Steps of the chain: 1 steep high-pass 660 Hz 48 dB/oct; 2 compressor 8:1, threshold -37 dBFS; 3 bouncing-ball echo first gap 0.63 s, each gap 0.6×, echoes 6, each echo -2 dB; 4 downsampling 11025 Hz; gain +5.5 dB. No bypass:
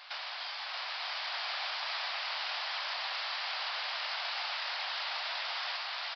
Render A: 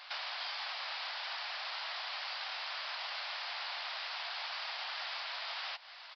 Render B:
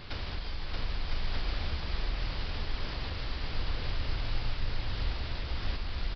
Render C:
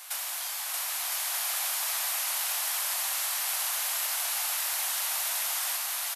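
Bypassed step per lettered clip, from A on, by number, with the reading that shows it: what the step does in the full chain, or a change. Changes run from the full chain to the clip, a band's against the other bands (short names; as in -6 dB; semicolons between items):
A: 3, loudness change -4.0 LU; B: 1, 500 Hz band +9.5 dB; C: 4, loudness change +7.0 LU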